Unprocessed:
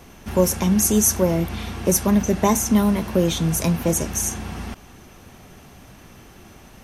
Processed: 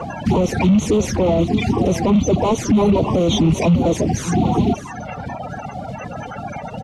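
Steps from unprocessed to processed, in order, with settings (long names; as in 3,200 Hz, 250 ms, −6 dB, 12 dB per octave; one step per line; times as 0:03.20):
spectral magnitudes quantised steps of 30 dB
reverb reduction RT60 1.4 s
mid-hump overdrive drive 31 dB, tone 1,900 Hz, clips at −5.5 dBFS
Bessel low-pass filter 5,600 Hz, order 2
parametric band 120 Hz +12.5 dB 2.6 octaves
on a send: single-tap delay 595 ms −16 dB
on the sum: brickwall limiter −7.5 dBFS, peak gain reduction 10.5 dB
flanger swept by the level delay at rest 2.5 ms, full sweep at −12 dBFS
reversed playback
upward compression, threshold −25 dBFS
reversed playback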